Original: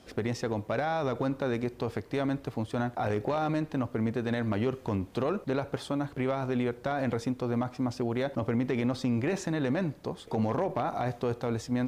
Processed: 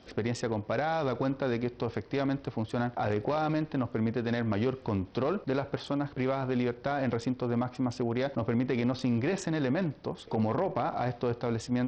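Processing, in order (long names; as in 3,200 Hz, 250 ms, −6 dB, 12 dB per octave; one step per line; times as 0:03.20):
SBC 64 kbit/s 44,100 Hz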